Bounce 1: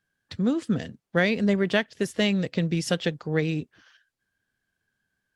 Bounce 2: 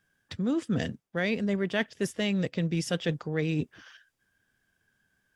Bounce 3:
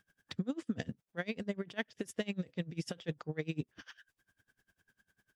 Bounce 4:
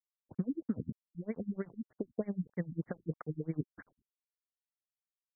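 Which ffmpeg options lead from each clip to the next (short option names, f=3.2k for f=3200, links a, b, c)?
-af "areverse,acompressor=threshold=-31dB:ratio=6,areverse,bandreject=f=4.2k:w=9.8,volume=5.5dB"
-af "acompressor=threshold=-36dB:ratio=3,aeval=exprs='val(0)*pow(10,-26*(0.5-0.5*cos(2*PI*10*n/s))/20)':c=same,volume=4.5dB"
-af "aeval=exprs='val(0)*gte(abs(val(0)),0.0015)':c=same,afftfilt=real='re*lt(b*sr/1024,290*pow(2300/290,0.5+0.5*sin(2*PI*3.2*pts/sr)))':imag='im*lt(b*sr/1024,290*pow(2300/290,0.5+0.5*sin(2*PI*3.2*pts/sr)))':win_size=1024:overlap=0.75,volume=1.5dB"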